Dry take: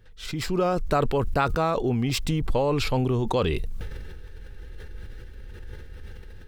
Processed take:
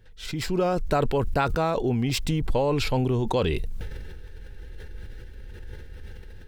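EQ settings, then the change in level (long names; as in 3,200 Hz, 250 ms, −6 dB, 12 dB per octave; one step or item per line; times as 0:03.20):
notch filter 1,200 Hz, Q 7.5
0.0 dB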